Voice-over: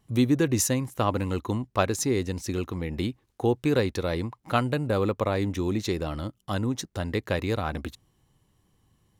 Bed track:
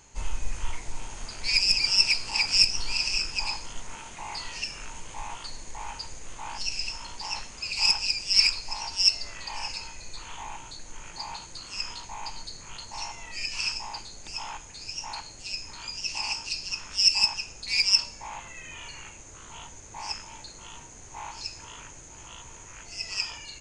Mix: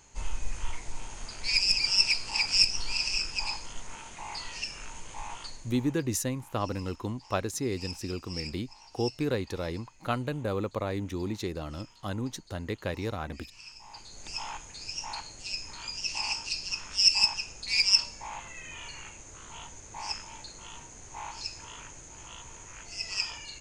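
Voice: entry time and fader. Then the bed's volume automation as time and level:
5.55 s, -6.0 dB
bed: 5.45 s -2.5 dB
6.04 s -19 dB
13.66 s -19 dB
14.21 s -1 dB

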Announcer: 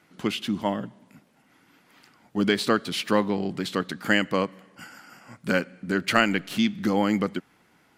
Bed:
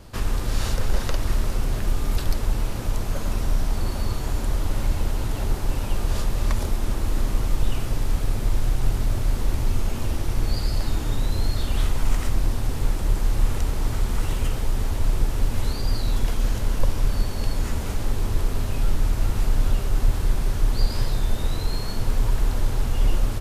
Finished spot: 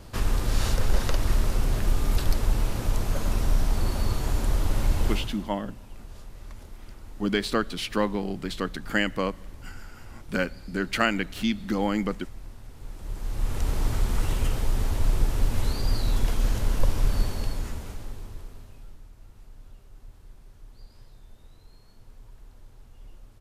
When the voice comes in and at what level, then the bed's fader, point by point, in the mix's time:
4.85 s, -3.0 dB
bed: 5.12 s -0.5 dB
5.51 s -20 dB
12.74 s -20 dB
13.71 s -1.5 dB
17.25 s -1.5 dB
19.10 s -27.5 dB

